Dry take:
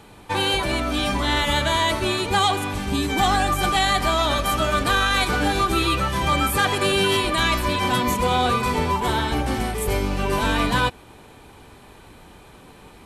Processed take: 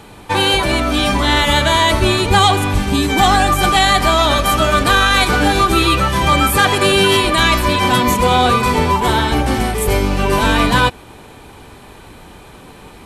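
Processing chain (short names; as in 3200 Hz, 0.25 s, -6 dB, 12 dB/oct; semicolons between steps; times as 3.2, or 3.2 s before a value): 1.93–2.83 low shelf 100 Hz +10.5 dB; gain +7.5 dB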